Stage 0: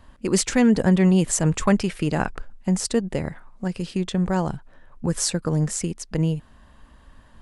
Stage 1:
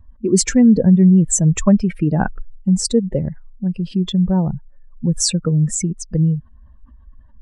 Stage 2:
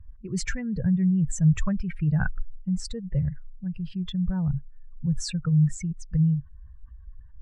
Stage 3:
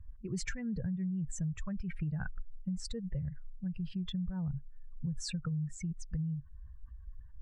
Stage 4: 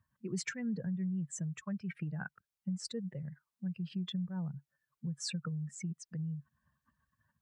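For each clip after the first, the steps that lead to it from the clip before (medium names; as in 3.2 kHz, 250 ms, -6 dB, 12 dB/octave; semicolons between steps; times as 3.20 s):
spectral contrast enhancement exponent 2.1; trim +6.5 dB
FFT filter 140 Hz 0 dB, 250 Hz -24 dB, 850 Hz -17 dB, 1.5 kHz -3 dB, 11 kHz -22 dB
compression 12:1, threshold -29 dBFS, peak gain reduction 14.5 dB; trim -3.5 dB
high-pass 170 Hz 24 dB/octave; trim +1.5 dB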